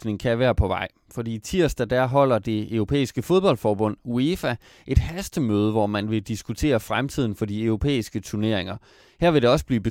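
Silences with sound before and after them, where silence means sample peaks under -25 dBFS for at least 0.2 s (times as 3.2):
0.85–1.18
4.54–4.89
8.74–9.22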